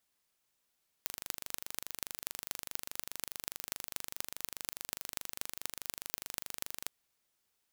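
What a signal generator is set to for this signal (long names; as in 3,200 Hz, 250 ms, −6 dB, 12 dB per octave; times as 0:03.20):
impulse train 24.8 per second, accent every 6, −7 dBFS 5.84 s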